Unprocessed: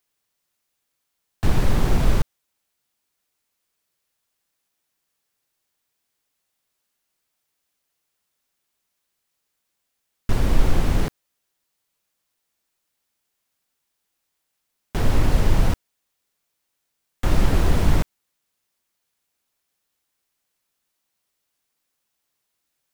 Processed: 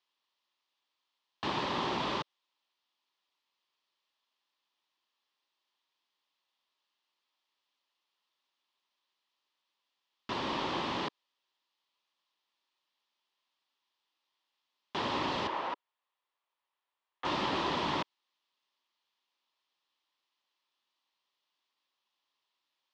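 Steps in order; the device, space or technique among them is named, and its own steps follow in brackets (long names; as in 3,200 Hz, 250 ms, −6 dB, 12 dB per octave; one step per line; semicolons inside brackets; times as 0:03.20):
0:15.47–0:17.25: three-way crossover with the lows and the highs turned down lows −19 dB, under 360 Hz, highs −13 dB, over 2,300 Hz
phone earpiece (loudspeaker in its box 440–4,500 Hz, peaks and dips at 470 Hz −8 dB, 690 Hz −7 dB, 1,000 Hz +5 dB, 1,500 Hz −8 dB, 2,200 Hz −5 dB, 3,300 Hz +3 dB)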